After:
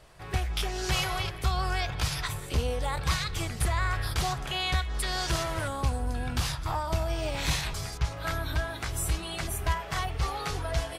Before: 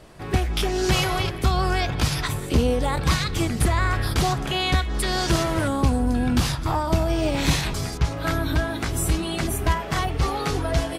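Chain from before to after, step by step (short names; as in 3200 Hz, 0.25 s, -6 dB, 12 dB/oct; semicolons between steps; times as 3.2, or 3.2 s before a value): bell 260 Hz -12 dB 1.4 oct; gain -5 dB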